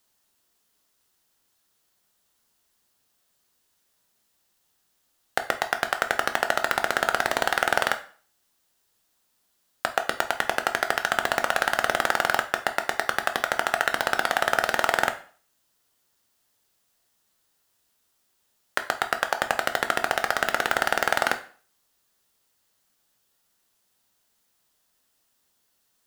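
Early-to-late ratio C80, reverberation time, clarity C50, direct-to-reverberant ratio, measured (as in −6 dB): 18.0 dB, 0.45 s, 13.0 dB, 7.0 dB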